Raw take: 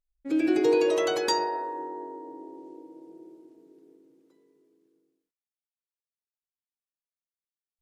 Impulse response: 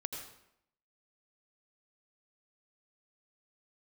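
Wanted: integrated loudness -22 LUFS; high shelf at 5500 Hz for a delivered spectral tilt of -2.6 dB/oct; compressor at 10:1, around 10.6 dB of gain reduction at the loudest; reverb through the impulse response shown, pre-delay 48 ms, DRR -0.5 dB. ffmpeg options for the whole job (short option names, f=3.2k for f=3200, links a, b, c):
-filter_complex "[0:a]highshelf=f=5.5k:g=6.5,acompressor=threshold=-29dB:ratio=10,asplit=2[a][b];[1:a]atrim=start_sample=2205,adelay=48[c];[b][c]afir=irnorm=-1:irlink=0,volume=0.5dB[d];[a][d]amix=inputs=2:normalize=0,volume=9.5dB"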